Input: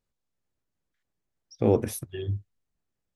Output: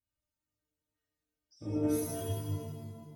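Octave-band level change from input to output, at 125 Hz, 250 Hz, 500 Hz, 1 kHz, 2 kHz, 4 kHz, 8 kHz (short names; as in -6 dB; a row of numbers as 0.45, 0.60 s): -5.5, -3.0, -10.0, -9.0, -7.5, -3.5, -2.5 dB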